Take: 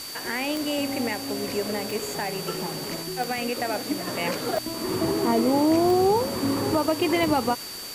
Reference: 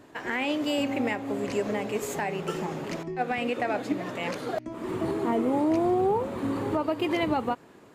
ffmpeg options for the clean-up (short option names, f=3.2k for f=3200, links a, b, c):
-af "adeclick=t=4,bandreject=f=4.6k:w=30,afwtdn=0.013,asetnsamples=n=441:p=0,asendcmd='4.07 volume volume -4dB',volume=0dB"